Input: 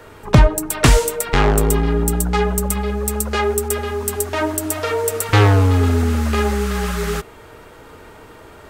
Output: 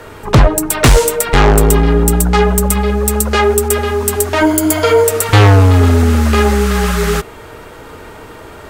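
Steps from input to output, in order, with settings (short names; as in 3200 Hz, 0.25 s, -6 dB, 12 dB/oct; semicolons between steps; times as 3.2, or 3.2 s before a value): 4.4–5.04 ripple EQ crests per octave 1.8, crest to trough 11 dB; sine folder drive 10 dB, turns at 3.5 dBFS; gain -6 dB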